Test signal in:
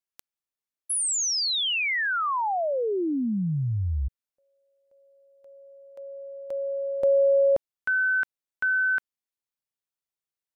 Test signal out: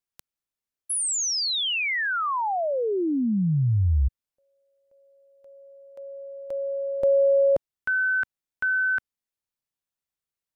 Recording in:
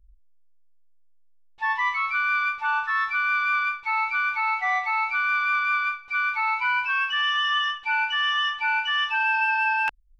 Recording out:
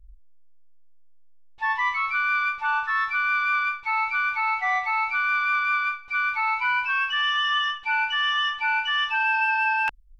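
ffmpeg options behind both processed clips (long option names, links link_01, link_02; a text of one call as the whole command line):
ffmpeg -i in.wav -af "lowshelf=frequency=180:gain=7" out.wav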